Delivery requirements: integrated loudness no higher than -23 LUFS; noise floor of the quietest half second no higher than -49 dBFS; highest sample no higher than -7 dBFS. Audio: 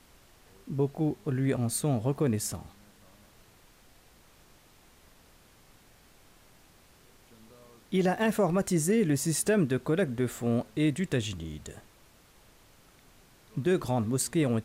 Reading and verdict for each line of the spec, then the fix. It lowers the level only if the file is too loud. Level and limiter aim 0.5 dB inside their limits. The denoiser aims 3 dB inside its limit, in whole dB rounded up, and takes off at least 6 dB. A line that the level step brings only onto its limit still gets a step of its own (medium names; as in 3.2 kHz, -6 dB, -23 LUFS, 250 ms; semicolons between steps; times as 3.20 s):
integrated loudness -29.0 LUFS: pass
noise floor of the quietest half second -59 dBFS: pass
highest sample -16.0 dBFS: pass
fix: none needed